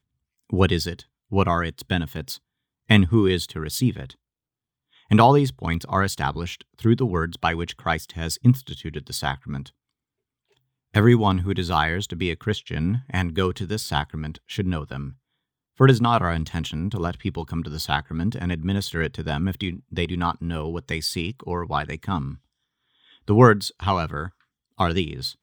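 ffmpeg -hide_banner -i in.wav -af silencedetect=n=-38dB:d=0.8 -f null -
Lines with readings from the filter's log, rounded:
silence_start: 4.12
silence_end: 5.11 | silence_duration: 0.99
silence_start: 9.69
silence_end: 10.94 | silence_duration: 1.26
silence_start: 22.36
silence_end: 23.28 | silence_duration: 0.92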